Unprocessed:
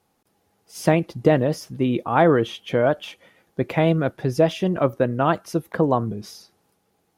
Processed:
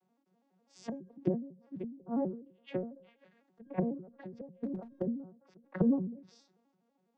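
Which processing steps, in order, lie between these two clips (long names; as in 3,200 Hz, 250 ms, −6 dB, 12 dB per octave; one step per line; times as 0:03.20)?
vocoder with an arpeggio as carrier major triad, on F#3, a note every 83 ms
treble cut that deepens with the level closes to 310 Hz, closed at −19 dBFS
0:04.58–0:05.02: asymmetric clip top −19.5 dBFS, bottom −16 dBFS
tuned comb filter 540 Hz, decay 0.53 s, mix 50%
every ending faded ahead of time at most 110 dB per second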